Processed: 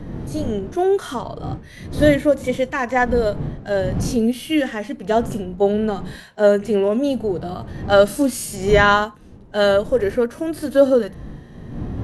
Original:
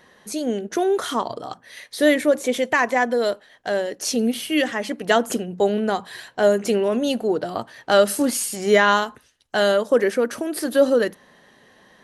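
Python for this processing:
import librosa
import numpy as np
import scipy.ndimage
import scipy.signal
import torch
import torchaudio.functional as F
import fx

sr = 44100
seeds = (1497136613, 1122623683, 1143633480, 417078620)

y = fx.dmg_wind(x, sr, seeds[0], corner_hz=210.0, level_db=-28.0)
y = fx.hpss(y, sr, part='percussive', gain_db=-16)
y = y * 10.0 ** (3.0 / 20.0)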